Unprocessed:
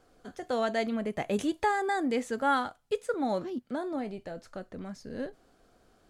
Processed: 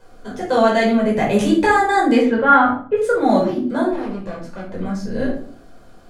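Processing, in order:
0:02.21–0:02.96: low-pass filter 3,700 Hz → 1,900 Hz 24 dB per octave
0:03.91–0:04.71: tube saturation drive 39 dB, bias 0.75
rectangular room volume 460 cubic metres, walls furnished, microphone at 5 metres
level +6 dB

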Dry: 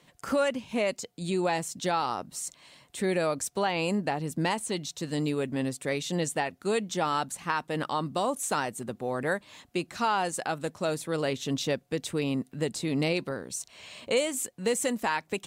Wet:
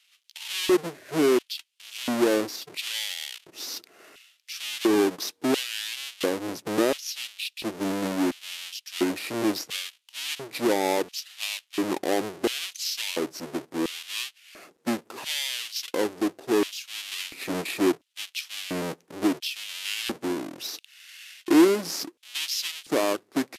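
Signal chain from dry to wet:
each half-wave held at its own peak
auto-filter high-pass square 1.1 Hz 480–4,600 Hz
change of speed 0.656×
level −2.5 dB

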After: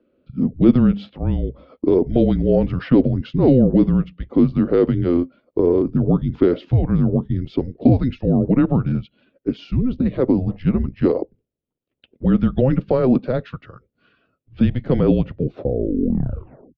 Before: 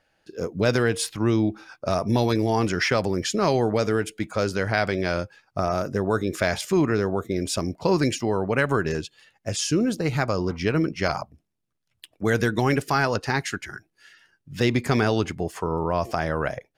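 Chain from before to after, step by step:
turntable brake at the end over 1.39 s
single-sideband voice off tune −260 Hz 210–3,600 Hz
graphic EQ with 10 bands 125 Hz +6 dB, 250 Hz +12 dB, 500 Hz +12 dB, 1,000 Hz −8 dB, 2,000 Hz −9 dB
level −1.5 dB

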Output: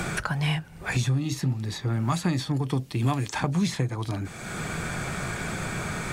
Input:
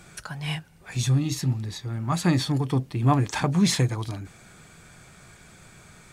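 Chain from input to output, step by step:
multiband upward and downward compressor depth 100%
level −2 dB

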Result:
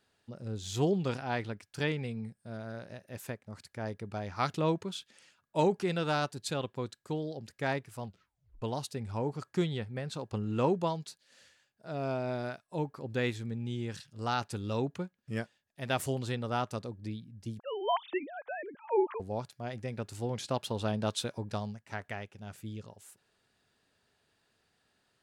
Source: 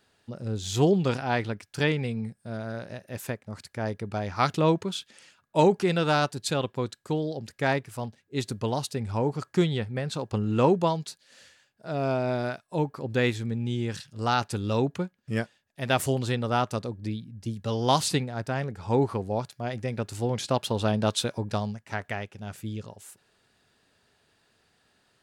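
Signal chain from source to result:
0:08.04: tape stop 0.58 s
0:17.59–0:19.20: three sine waves on the formant tracks
level −7 dB

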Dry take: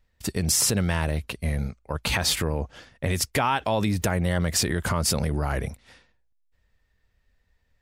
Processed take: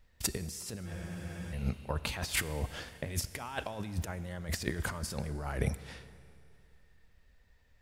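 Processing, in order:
compressor whose output falls as the input rises −30 dBFS, ratio −0.5
four-comb reverb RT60 2.7 s, combs from 26 ms, DRR 14.5 dB
frozen spectrum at 0:00.89, 0.63 s
level −4 dB

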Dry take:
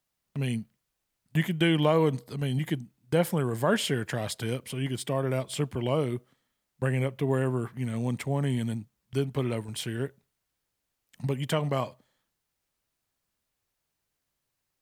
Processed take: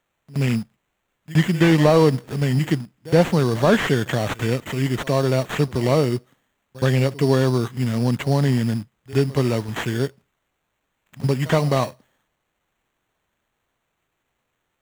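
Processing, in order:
in parallel at −11.5 dB: bit reduction 7 bits
on the sum: echo ahead of the sound 72 ms −20.5 dB
sample-rate reduction 5,000 Hz, jitter 0%
slew-rate limiting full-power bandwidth 110 Hz
level +7 dB

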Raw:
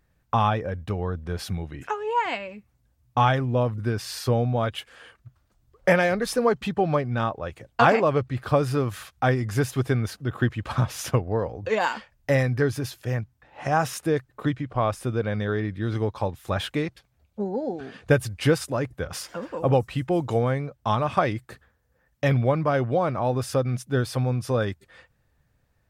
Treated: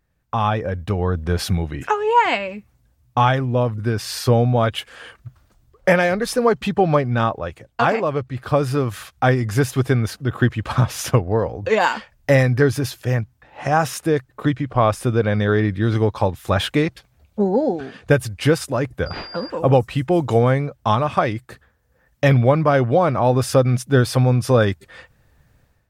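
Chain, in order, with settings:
automatic gain control gain up to 14 dB
0:19.06–0:19.50: switching amplifier with a slow clock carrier 4,800 Hz
level −2.5 dB

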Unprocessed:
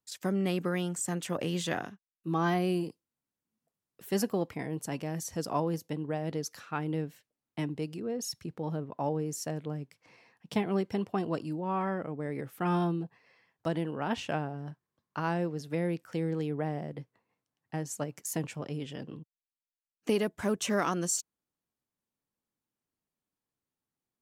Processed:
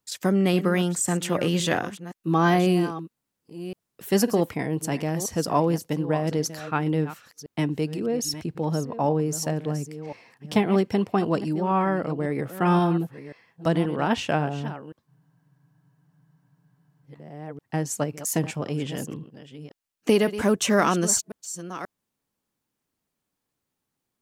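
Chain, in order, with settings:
delay that plays each chunk backwards 533 ms, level −13 dB
frozen spectrum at 0:15.10, 1.95 s
level +8.5 dB

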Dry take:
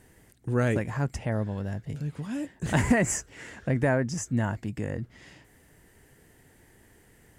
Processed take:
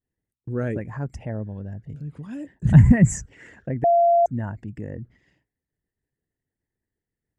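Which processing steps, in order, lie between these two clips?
spectral envelope exaggerated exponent 1.5
0:02.65–0:03.26: low shelf with overshoot 250 Hz +13.5 dB, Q 1.5
downward expander −41 dBFS
0:03.84–0:04.26: beep over 686 Hz −12 dBFS
level −1.5 dB

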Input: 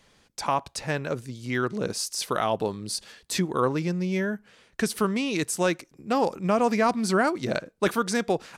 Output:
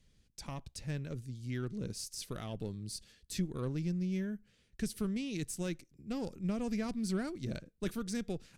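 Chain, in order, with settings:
harmonic generator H 4 −25 dB, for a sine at −12.5 dBFS
guitar amp tone stack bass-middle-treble 10-0-1
level +8.5 dB

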